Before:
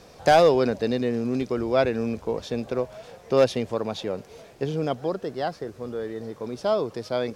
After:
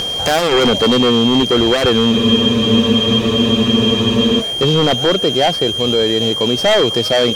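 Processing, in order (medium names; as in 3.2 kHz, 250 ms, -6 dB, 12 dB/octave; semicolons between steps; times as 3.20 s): in parallel at -10 dB: sine folder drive 15 dB, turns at -8.5 dBFS; on the sum: upward compressor, threshold -31 dBFS; whistle 3.2 kHz -23 dBFS; power-law waveshaper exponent 1.4; loudness maximiser +16 dB; spectral freeze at 2.13 s, 2.28 s; trim -4 dB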